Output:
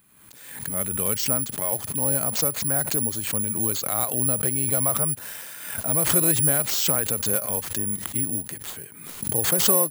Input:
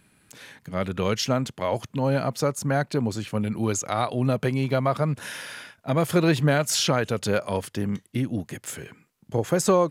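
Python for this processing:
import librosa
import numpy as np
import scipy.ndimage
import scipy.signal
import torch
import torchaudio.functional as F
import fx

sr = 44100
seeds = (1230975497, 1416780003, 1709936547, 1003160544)

y = (np.kron(x[::4], np.eye(4)[0]) * 4)[:len(x)]
y = fx.pre_swell(y, sr, db_per_s=55.0)
y = y * 10.0 ** (-6.5 / 20.0)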